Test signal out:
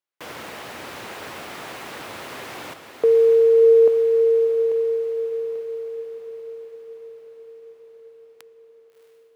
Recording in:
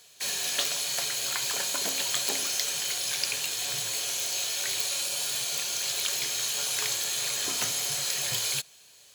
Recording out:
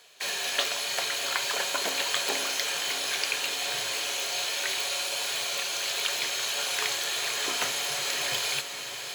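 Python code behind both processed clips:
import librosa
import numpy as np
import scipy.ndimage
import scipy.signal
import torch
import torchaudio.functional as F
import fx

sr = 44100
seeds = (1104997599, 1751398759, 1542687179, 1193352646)

y = scipy.signal.sosfilt(scipy.signal.butter(4, 79.0, 'highpass', fs=sr, output='sos'), x)
y = fx.bass_treble(y, sr, bass_db=-13, treble_db=-11)
y = fx.echo_diffused(y, sr, ms=669, feedback_pct=65, wet_db=-9.0)
y = y * librosa.db_to_amplitude(5.5)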